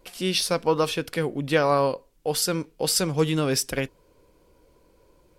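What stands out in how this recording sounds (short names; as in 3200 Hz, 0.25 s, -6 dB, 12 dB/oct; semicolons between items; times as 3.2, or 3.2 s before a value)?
noise floor -61 dBFS; spectral tilt -4.0 dB/oct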